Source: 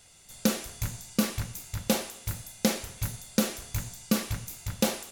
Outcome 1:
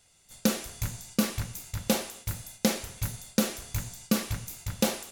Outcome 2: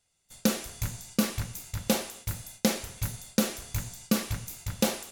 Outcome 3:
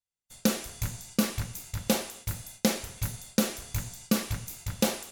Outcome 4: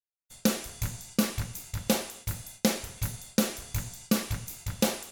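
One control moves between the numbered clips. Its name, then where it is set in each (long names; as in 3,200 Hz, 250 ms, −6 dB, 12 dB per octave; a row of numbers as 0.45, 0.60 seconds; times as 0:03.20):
noise gate, range: −7, −19, −41, −57 decibels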